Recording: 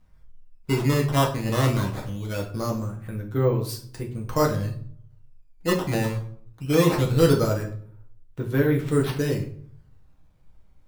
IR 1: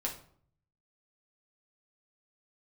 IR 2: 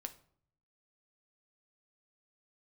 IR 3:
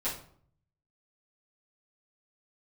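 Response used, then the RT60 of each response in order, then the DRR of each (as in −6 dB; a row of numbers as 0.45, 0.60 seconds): 1; 0.55, 0.60, 0.55 seconds; −1.5, 7.5, −11.0 decibels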